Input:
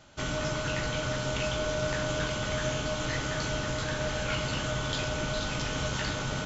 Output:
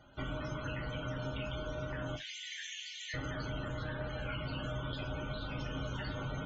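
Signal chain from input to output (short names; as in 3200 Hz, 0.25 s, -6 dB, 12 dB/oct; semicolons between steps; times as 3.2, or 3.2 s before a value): tracing distortion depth 0.053 ms; 2.16–3.14 elliptic high-pass 1800 Hz, stop band 40 dB; compressor, threshold -32 dBFS, peak gain reduction 6.5 dB; loudest bins only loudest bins 64; non-linear reverb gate 90 ms falling, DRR 6.5 dB; gain -3.5 dB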